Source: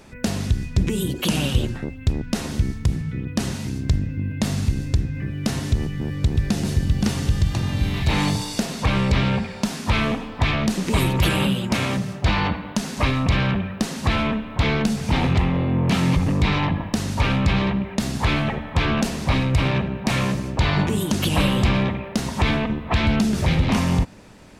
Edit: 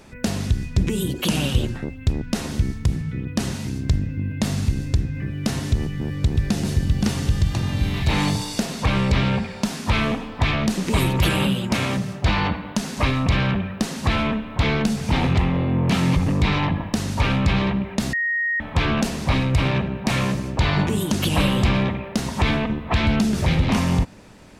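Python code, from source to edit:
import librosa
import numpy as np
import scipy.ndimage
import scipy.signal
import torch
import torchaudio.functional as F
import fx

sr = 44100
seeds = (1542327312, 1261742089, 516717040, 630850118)

y = fx.edit(x, sr, fx.bleep(start_s=18.13, length_s=0.47, hz=1870.0, db=-19.5), tone=tone)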